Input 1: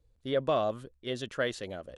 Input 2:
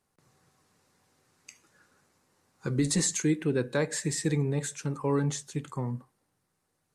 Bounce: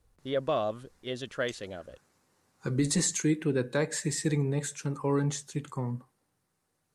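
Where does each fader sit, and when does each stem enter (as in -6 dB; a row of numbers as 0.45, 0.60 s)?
-1.0, -0.5 dB; 0.00, 0.00 s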